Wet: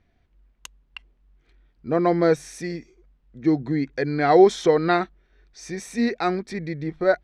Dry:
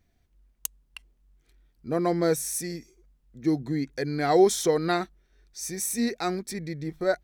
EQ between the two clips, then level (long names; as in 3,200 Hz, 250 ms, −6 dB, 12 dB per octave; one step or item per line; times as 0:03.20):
low-pass filter 3,100 Hz 12 dB per octave
low-shelf EQ 340 Hz −3.5 dB
+6.5 dB